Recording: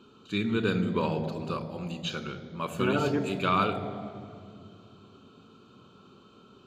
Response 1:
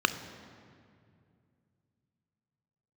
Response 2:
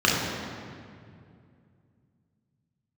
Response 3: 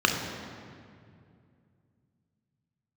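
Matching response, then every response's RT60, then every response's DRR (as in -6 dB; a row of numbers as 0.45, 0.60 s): 1; 2.3, 2.3, 2.3 s; 10.0, -5.0, 1.5 dB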